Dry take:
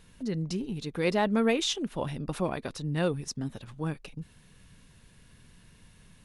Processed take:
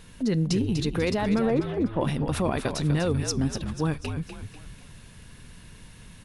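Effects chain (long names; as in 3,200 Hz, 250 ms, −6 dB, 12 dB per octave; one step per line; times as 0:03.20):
0:01.45–0:02.01: low-pass filter 1,500 Hz 24 dB per octave
brickwall limiter −24 dBFS, peak gain reduction 11 dB
echo with shifted repeats 246 ms, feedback 44%, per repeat −60 Hz, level −8 dB
on a send at −22 dB: convolution reverb, pre-delay 3 ms
on the sum: level +8 dB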